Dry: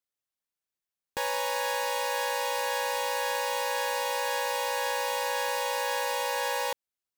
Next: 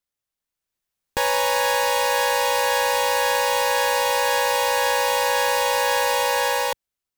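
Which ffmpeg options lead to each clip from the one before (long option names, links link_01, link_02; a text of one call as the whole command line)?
ffmpeg -i in.wav -af "lowshelf=frequency=92:gain=10.5,dynaudnorm=framelen=220:gausssize=7:maxgain=6dB,volume=3dB" out.wav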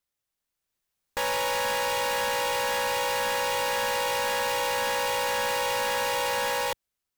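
ffmpeg -i in.wav -af "asoftclip=type=tanh:threshold=-26dB,volume=1dB" out.wav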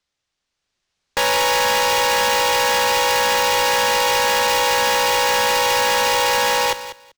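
ffmpeg -i in.wav -filter_complex "[0:a]acrossover=split=120|5800[link_01][link_02][link_03];[link_02]crystalizer=i=2:c=0[link_04];[link_03]acrusher=bits=4:mix=0:aa=0.000001[link_05];[link_01][link_04][link_05]amix=inputs=3:normalize=0,aecho=1:1:194|388:0.224|0.0358,volume=8.5dB" out.wav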